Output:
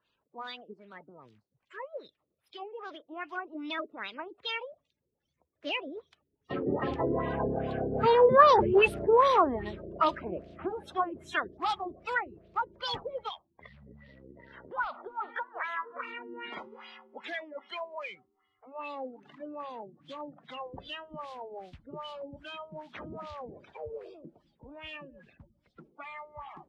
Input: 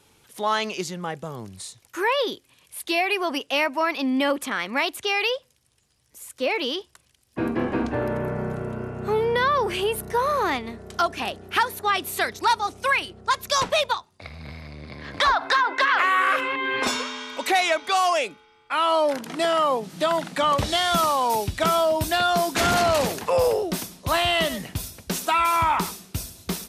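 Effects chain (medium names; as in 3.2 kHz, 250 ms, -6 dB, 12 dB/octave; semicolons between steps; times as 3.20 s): coarse spectral quantiser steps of 30 dB; Doppler pass-by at 8.59 s, 41 m/s, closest 29 m; LFO low-pass sine 2.5 Hz 350–3900 Hz; trim +2 dB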